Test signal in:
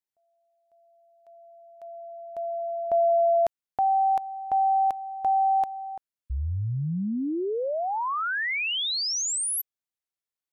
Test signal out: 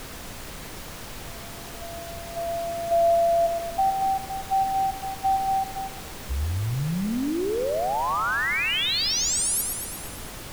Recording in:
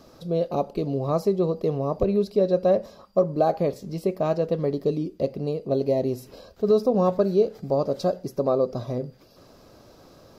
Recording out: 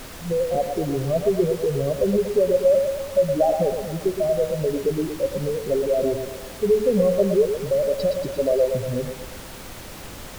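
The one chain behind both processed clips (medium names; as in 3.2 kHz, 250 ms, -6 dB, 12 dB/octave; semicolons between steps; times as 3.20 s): spectral contrast enhancement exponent 3.1; thinning echo 117 ms, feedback 64%, high-pass 380 Hz, level -5 dB; added noise pink -40 dBFS; trim +2 dB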